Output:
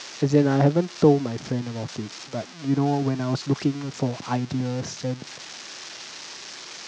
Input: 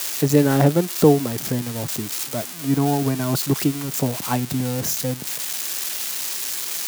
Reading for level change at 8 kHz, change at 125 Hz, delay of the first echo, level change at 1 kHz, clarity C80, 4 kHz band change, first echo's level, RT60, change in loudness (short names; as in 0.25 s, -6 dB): -13.5 dB, -2.5 dB, none, -3.0 dB, none, -6.0 dB, none, none, -3.0 dB